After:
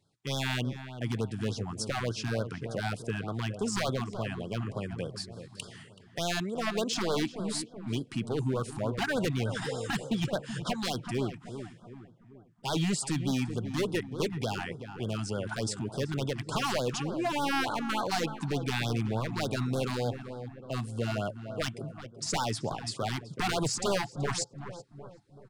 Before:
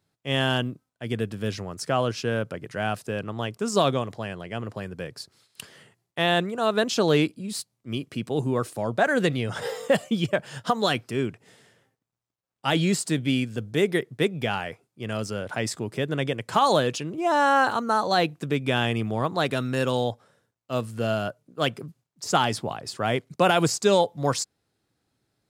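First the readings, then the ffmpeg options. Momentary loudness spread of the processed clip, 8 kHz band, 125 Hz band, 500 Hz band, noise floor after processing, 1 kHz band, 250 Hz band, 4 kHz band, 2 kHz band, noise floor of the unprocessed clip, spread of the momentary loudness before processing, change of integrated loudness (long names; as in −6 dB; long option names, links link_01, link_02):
10 LU, −3.0 dB, −3.0 dB, −8.5 dB, −55 dBFS, −9.5 dB, −5.5 dB, −6.0 dB, −7.5 dB, −82 dBFS, 13 LU, −7.0 dB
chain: -filter_complex "[0:a]aresample=22050,aresample=44100,asplit=2[link_01][link_02];[link_02]acompressor=threshold=-34dB:ratio=6,volume=3dB[link_03];[link_01][link_03]amix=inputs=2:normalize=0,aeval=exprs='0.158*(abs(mod(val(0)/0.158+3,4)-2)-1)':channel_layout=same,equalizer=frequency=120:width_type=o:width=0.77:gain=2.5,asplit=2[link_04][link_05];[link_05]adelay=379,lowpass=frequency=1500:poles=1,volume=-9.5dB,asplit=2[link_06][link_07];[link_07]adelay=379,lowpass=frequency=1500:poles=1,volume=0.5,asplit=2[link_08][link_09];[link_09]adelay=379,lowpass=frequency=1500:poles=1,volume=0.5,asplit=2[link_10][link_11];[link_11]adelay=379,lowpass=frequency=1500:poles=1,volume=0.5,asplit=2[link_12][link_13];[link_13]adelay=379,lowpass=frequency=1500:poles=1,volume=0.5,asplit=2[link_14][link_15];[link_15]adelay=379,lowpass=frequency=1500:poles=1,volume=0.5[link_16];[link_04][link_06][link_08][link_10][link_12][link_14][link_16]amix=inputs=7:normalize=0,afftfilt=real='re*(1-between(b*sr/1024,450*pow(2300/450,0.5+0.5*sin(2*PI*3.4*pts/sr))/1.41,450*pow(2300/450,0.5+0.5*sin(2*PI*3.4*pts/sr))*1.41))':imag='im*(1-between(b*sr/1024,450*pow(2300/450,0.5+0.5*sin(2*PI*3.4*pts/sr))/1.41,450*pow(2300/450,0.5+0.5*sin(2*PI*3.4*pts/sr))*1.41))':win_size=1024:overlap=0.75,volume=-7dB"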